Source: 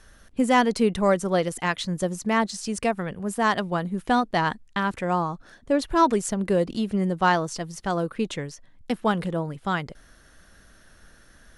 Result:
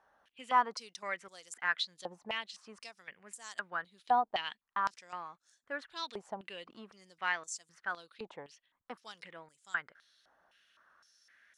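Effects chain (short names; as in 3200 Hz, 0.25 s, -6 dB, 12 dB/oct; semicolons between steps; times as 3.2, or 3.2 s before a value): stepped band-pass 3.9 Hz 840–7300 Hz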